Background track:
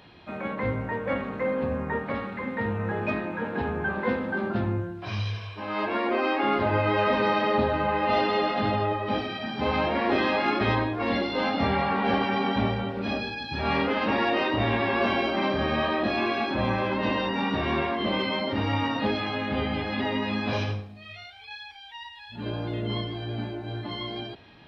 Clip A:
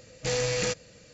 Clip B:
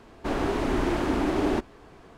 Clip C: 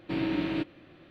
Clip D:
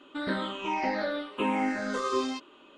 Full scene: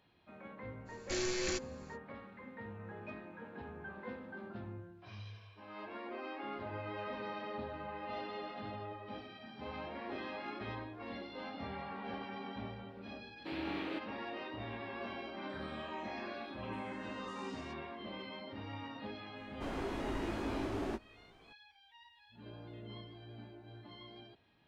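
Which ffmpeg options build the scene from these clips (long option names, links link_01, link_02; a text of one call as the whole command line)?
ffmpeg -i bed.wav -i cue0.wav -i cue1.wav -i cue2.wav -i cue3.wav -filter_complex "[0:a]volume=-19dB[link_01];[1:a]afreqshift=-130[link_02];[3:a]highpass=360[link_03];[4:a]acrossover=split=530|3000[link_04][link_05][link_06];[link_04]adelay=60[link_07];[link_06]adelay=100[link_08];[link_07][link_05][link_08]amix=inputs=3:normalize=0[link_09];[2:a]asplit=2[link_10][link_11];[link_11]adelay=18,volume=-5dB[link_12];[link_10][link_12]amix=inputs=2:normalize=0[link_13];[link_02]atrim=end=1.13,asetpts=PTS-STARTPTS,volume=-8dB,afade=type=in:duration=0.05,afade=type=out:start_time=1.08:duration=0.05,adelay=850[link_14];[link_03]atrim=end=1.1,asetpts=PTS-STARTPTS,volume=-7.5dB,afade=type=in:duration=0.004:curve=hsin,afade=type=out:start_time=1.096:duration=0.004:curve=hsin,adelay=13360[link_15];[link_09]atrim=end=2.77,asetpts=PTS-STARTPTS,volume=-16.5dB,afade=type=in:duration=0.004:curve=hsin,afade=type=out:start_time=2.766:duration=0.004:curve=hsin,adelay=672084S[link_16];[link_13]atrim=end=2.17,asetpts=PTS-STARTPTS,volume=-14dB,afade=type=in:duration=0.004:curve=hsin,afade=type=out:start_time=2.166:duration=0.004:curve=hsin,adelay=19360[link_17];[link_01][link_14][link_15][link_16][link_17]amix=inputs=5:normalize=0" out.wav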